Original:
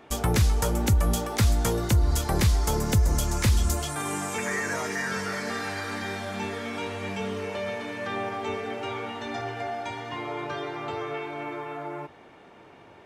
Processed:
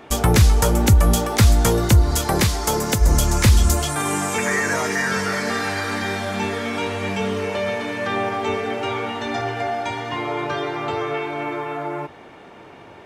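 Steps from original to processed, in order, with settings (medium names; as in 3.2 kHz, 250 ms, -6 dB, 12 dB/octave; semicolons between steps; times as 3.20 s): 2.02–3.00 s: high-pass 99 Hz -> 350 Hz 6 dB/octave; trim +8 dB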